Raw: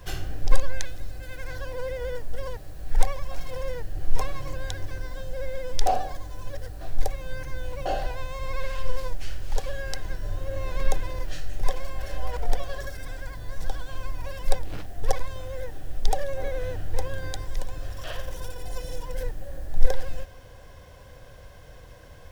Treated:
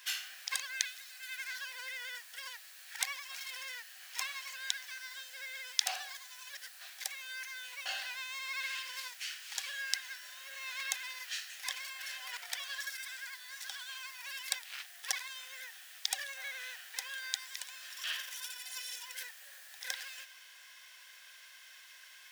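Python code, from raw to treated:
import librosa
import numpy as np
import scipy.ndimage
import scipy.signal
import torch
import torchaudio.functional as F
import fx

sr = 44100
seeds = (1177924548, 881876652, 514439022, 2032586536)

y = fx.octave_divider(x, sr, octaves=1, level_db=-4.0)
y = fx.ladder_highpass(y, sr, hz=1500.0, resonance_pct=20)
y = F.gain(torch.from_numpy(y), 8.5).numpy()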